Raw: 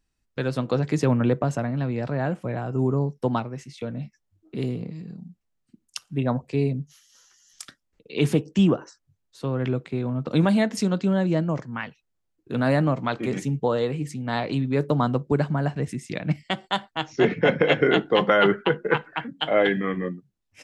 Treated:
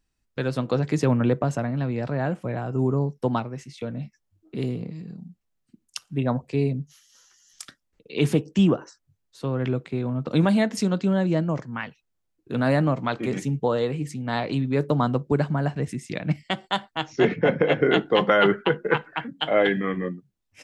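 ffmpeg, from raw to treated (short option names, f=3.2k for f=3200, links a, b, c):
-filter_complex "[0:a]asettb=1/sr,asplit=3[a][b][c];[a]atrim=end=17.364[d];[b]atrim=start=17.36:end=17.91,asetpts=PTS-STARTPTS,afade=t=in:d=0.004:c=qsin,afade=t=out:st=0.546:d=0.004:c=qsin,highshelf=f=2.1k:g=-8.5[e];[c]atrim=start=17.906[f];[d][e]acrossfade=d=0.004:c1=hsin:c2=qsin[g];[g][f]acrossfade=d=0.004:c1=qsin:c2=hsin"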